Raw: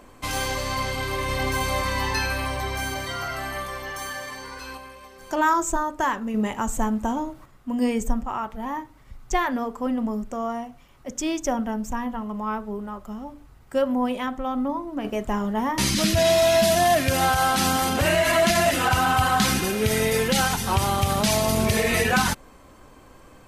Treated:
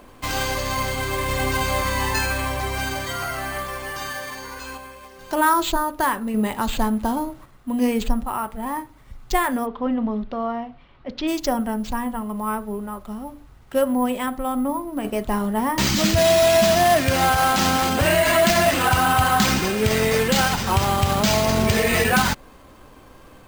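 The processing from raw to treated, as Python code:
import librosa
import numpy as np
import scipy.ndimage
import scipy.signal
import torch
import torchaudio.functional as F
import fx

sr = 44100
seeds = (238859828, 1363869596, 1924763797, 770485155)

y = np.repeat(x[::4], 4)[:len(x)]
y = fx.cheby2_lowpass(y, sr, hz=9200.0, order=4, stop_db=50, at=(9.65, 11.27), fade=0.02)
y = y * librosa.db_to_amplitude(2.5)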